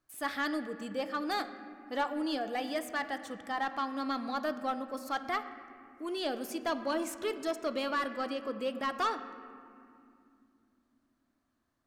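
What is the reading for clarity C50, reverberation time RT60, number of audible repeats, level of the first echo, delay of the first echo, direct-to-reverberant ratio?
11.0 dB, 2.6 s, none, none, none, 9.5 dB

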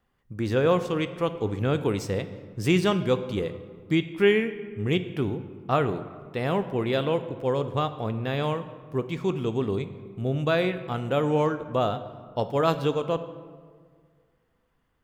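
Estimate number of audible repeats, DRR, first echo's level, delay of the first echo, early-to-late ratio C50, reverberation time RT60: none, 10.5 dB, none, none, 12.5 dB, 1.8 s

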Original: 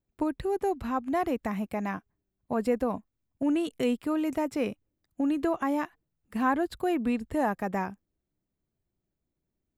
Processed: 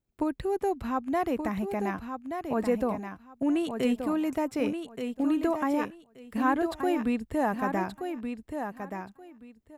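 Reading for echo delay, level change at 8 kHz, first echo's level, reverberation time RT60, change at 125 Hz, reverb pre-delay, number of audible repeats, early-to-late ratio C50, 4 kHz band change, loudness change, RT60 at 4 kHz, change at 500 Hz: 1.177 s, +1.0 dB, -7.0 dB, none, +1.0 dB, none, 2, none, +1.0 dB, 0.0 dB, none, +0.5 dB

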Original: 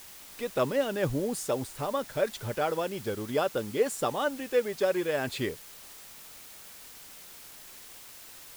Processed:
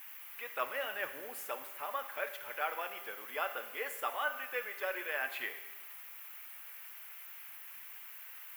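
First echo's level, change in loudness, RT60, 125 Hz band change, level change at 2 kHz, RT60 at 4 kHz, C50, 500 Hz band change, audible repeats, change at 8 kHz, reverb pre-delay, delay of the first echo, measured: none, -9.5 dB, 1.2 s, under -35 dB, +0.5 dB, 1.1 s, 10.0 dB, -14.0 dB, none, -11.0 dB, 7 ms, none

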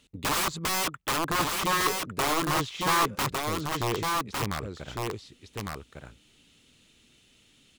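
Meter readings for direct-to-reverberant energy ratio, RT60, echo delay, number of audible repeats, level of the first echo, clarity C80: none, none, 1.155 s, 1, -3.5 dB, none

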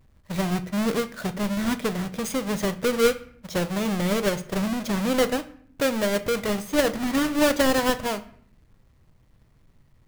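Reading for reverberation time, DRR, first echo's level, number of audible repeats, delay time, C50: 0.60 s, 10.0 dB, none, none, none, 16.0 dB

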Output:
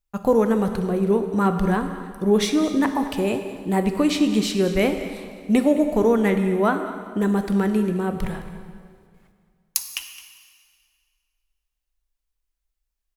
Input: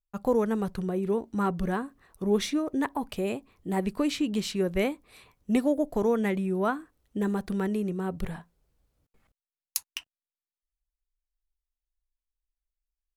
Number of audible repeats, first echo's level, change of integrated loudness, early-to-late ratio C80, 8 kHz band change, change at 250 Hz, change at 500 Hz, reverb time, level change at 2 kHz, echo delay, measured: 1, -16.0 dB, +7.5 dB, 8.5 dB, +7.5 dB, +8.0 dB, +7.5 dB, 2.1 s, +7.5 dB, 0.215 s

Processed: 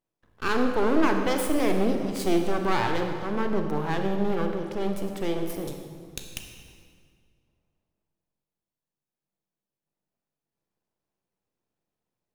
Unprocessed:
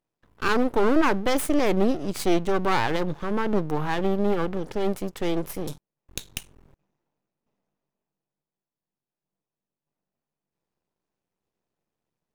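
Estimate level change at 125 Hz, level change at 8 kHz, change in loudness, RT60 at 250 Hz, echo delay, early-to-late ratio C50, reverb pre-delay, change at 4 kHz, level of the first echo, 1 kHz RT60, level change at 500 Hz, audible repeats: -1.5 dB, -2.5 dB, -1.5 dB, 2.2 s, none, 5.0 dB, 30 ms, -2.0 dB, none, 1.9 s, -2.0 dB, none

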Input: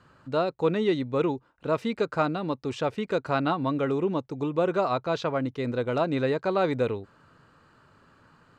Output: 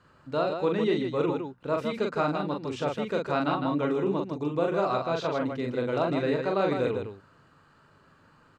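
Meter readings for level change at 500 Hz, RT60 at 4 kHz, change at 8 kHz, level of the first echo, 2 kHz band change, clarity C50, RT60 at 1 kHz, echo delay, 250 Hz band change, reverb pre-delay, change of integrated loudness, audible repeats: -0.5 dB, none, n/a, -3.5 dB, -1.0 dB, none, none, 41 ms, -0.5 dB, none, -1.0 dB, 2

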